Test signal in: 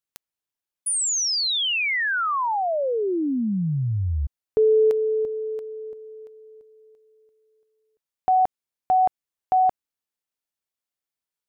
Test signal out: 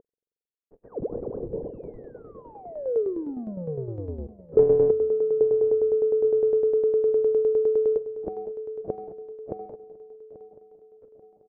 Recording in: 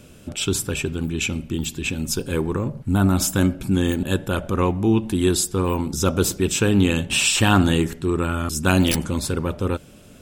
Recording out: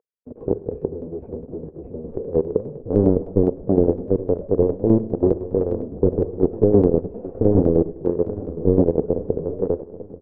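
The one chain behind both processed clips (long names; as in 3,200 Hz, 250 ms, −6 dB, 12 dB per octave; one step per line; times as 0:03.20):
linear delta modulator 16 kbit/s, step −32.5 dBFS
noise reduction from a noise print of the clip's start 11 dB
in parallel at +2.5 dB: downward compressor 16 to 1, threshold −31 dBFS
on the sum: log-companded quantiser 2 bits
transistor ladder low-pass 500 Hz, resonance 70%
on a send: repeating echo 837 ms, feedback 53%, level −16 dB
on the sum: spring reverb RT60 1.5 s, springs 45 ms, chirp 25 ms, DRR 18.5 dB
shaped tremolo saw down 9.8 Hz, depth 65%
level +4.5 dB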